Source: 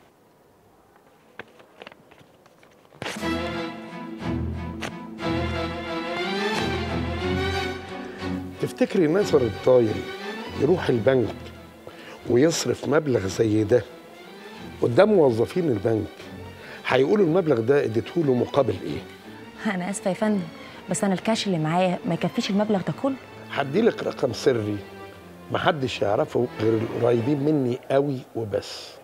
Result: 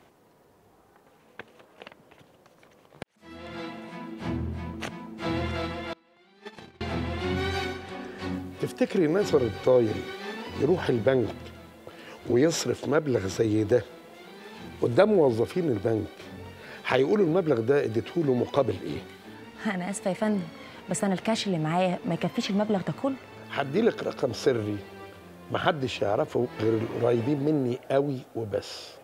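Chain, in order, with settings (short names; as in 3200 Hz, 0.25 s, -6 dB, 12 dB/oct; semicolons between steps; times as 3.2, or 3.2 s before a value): 3.03–3.74 fade in quadratic; 5.93–6.81 gate -21 dBFS, range -29 dB; gain -3.5 dB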